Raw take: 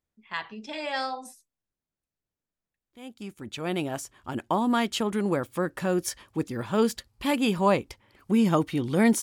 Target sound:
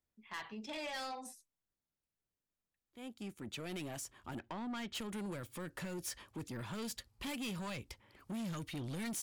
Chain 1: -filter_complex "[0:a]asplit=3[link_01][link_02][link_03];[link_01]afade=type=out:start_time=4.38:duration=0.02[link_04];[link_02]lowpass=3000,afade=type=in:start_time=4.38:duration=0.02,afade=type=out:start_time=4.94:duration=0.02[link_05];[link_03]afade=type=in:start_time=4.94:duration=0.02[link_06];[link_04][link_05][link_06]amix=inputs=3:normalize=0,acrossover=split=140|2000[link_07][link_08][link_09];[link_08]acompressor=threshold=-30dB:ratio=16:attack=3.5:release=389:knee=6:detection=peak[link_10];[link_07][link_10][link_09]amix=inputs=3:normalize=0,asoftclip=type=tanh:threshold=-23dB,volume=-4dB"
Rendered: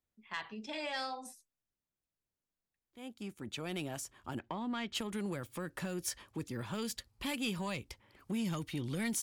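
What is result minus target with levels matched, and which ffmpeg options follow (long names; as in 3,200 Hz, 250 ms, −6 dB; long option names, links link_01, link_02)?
soft clipping: distortion −11 dB
-filter_complex "[0:a]asplit=3[link_01][link_02][link_03];[link_01]afade=type=out:start_time=4.38:duration=0.02[link_04];[link_02]lowpass=3000,afade=type=in:start_time=4.38:duration=0.02,afade=type=out:start_time=4.94:duration=0.02[link_05];[link_03]afade=type=in:start_time=4.94:duration=0.02[link_06];[link_04][link_05][link_06]amix=inputs=3:normalize=0,acrossover=split=140|2000[link_07][link_08][link_09];[link_08]acompressor=threshold=-30dB:ratio=16:attack=3.5:release=389:knee=6:detection=peak[link_10];[link_07][link_10][link_09]amix=inputs=3:normalize=0,asoftclip=type=tanh:threshold=-33.5dB,volume=-4dB"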